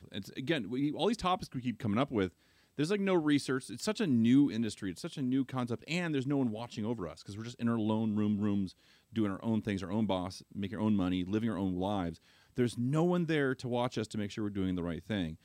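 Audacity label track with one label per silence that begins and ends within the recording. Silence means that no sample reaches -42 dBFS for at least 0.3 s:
2.290000	2.790000	silence
8.710000	9.160000	silence
12.140000	12.570000	silence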